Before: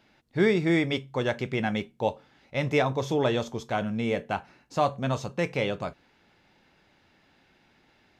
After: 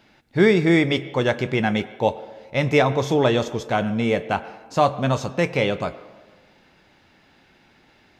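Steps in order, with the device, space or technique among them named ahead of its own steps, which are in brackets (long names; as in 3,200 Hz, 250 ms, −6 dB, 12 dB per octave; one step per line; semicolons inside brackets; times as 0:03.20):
filtered reverb send (on a send: high-pass filter 270 Hz 12 dB per octave + low-pass filter 4,500 Hz + convolution reverb RT60 1.3 s, pre-delay 91 ms, DRR 15.5 dB)
on the sum: level +6.5 dB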